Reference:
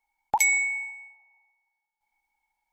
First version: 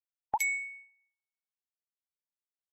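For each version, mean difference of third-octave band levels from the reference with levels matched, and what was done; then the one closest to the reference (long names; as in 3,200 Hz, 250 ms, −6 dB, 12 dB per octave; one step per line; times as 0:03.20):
3.0 dB: spectral dynamics exaggerated over time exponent 1.5
dynamic equaliser 6,000 Hz, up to −6 dB, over −38 dBFS, Q 0.84
expander for the loud parts 1.5 to 1, over −46 dBFS
level −5 dB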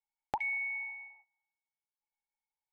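4.0 dB: low-pass filter 2,300 Hz 24 dB per octave
noise gate −60 dBFS, range −20 dB
downward compressor 2.5 to 1, threshold −37 dBFS, peak gain reduction 11.5 dB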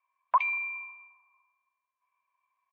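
7.0 dB: comb filter 2 ms, depth 96%
single-sideband voice off tune +150 Hz 460–2,600 Hz
AAC 32 kbit/s 48,000 Hz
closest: first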